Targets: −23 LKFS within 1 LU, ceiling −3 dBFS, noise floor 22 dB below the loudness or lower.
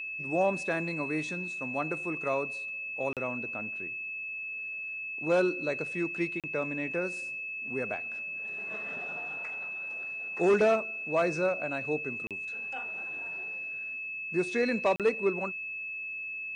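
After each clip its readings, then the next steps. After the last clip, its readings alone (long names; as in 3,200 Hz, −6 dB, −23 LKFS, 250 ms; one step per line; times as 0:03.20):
number of dropouts 4; longest dropout 37 ms; interfering tone 2,600 Hz; level of the tone −35 dBFS; integrated loudness −31.5 LKFS; sample peak −17.0 dBFS; target loudness −23.0 LKFS
→ repair the gap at 0:03.13/0:06.40/0:12.27/0:14.96, 37 ms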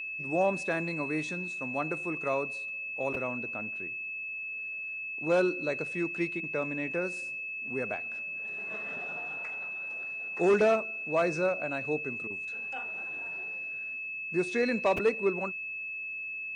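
number of dropouts 0; interfering tone 2,600 Hz; level of the tone −35 dBFS
→ notch filter 2,600 Hz, Q 30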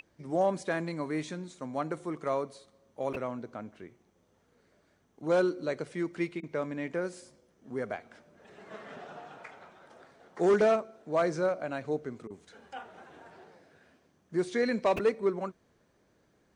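interfering tone none found; integrated loudness −32.0 LKFS; sample peak −18.0 dBFS; target loudness −23.0 LKFS
→ level +9 dB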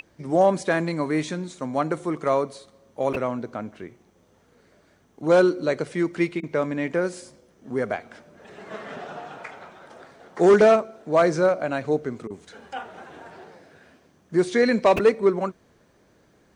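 integrated loudness −23.0 LKFS; sample peak −9.0 dBFS; background noise floor −60 dBFS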